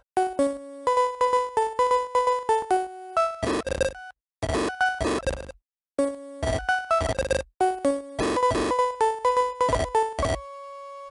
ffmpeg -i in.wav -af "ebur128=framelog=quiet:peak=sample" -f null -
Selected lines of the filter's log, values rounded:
Integrated loudness:
  I:         -25.2 LUFS
  Threshold: -35.6 LUFS
Loudness range:
  LRA:         3.4 LU
  Threshold: -45.7 LUFS
  LRA low:   -27.8 LUFS
  LRA high:  -24.4 LUFS
Sample peak:
  Peak:      -12.0 dBFS